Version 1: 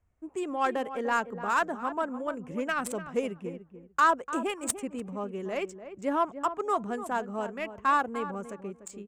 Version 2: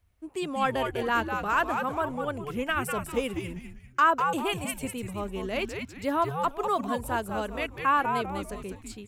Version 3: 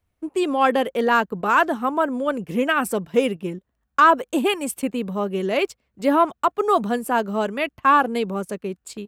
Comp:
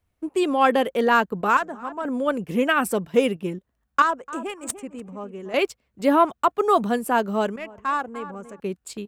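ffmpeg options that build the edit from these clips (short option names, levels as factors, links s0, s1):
-filter_complex "[0:a]asplit=3[s0][s1][s2];[2:a]asplit=4[s3][s4][s5][s6];[s3]atrim=end=1.572[s7];[s0]atrim=start=1.568:end=2.052[s8];[s4]atrim=start=2.048:end=4.022[s9];[s1]atrim=start=4.018:end=5.542[s10];[s5]atrim=start=5.538:end=7.562[s11];[s2]atrim=start=7.558:end=8.602[s12];[s6]atrim=start=8.598[s13];[s7][s8]acrossfade=d=0.004:c1=hsin:c2=hsin[s14];[s14][s9]acrossfade=d=0.004:c1=hsin:c2=hsin[s15];[s15][s10]acrossfade=d=0.004:c1=hsin:c2=hsin[s16];[s16][s11]acrossfade=d=0.004:c1=hsin:c2=hsin[s17];[s17][s12]acrossfade=d=0.004:c1=hsin:c2=hsin[s18];[s18][s13]acrossfade=d=0.004:c1=hsin:c2=hsin"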